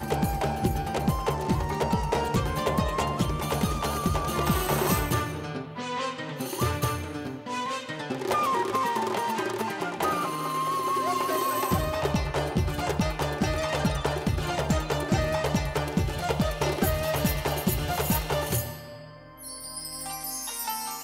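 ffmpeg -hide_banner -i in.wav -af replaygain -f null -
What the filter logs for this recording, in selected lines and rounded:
track_gain = +9.6 dB
track_peak = 0.174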